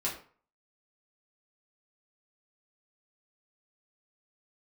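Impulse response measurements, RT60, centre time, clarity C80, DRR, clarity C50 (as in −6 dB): 0.45 s, 26 ms, 12.0 dB, −6.0 dB, 7.5 dB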